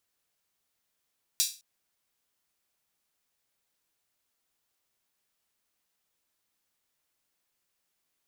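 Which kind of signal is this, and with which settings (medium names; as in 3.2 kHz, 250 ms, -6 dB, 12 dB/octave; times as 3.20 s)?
open hi-hat length 0.21 s, high-pass 4.4 kHz, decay 0.32 s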